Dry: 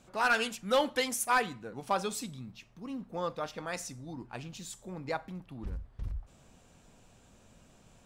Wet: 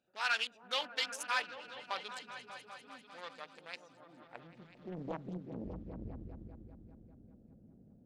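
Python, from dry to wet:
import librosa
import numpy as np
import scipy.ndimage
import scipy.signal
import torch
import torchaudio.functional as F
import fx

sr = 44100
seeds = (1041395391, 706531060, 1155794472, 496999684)

y = fx.wiener(x, sr, points=41)
y = fx.filter_sweep_bandpass(y, sr, from_hz=3500.0, to_hz=250.0, start_s=4.02, end_s=4.97, q=1.1)
y = fx.echo_opening(y, sr, ms=198, hz=200, octaves=1, feedback_pct=70, wet_db=-3)
y = fx.doppler_dist(y, sr, depth_ms=0.79)
y = y * 10.0 ** (2.5 / 20.0)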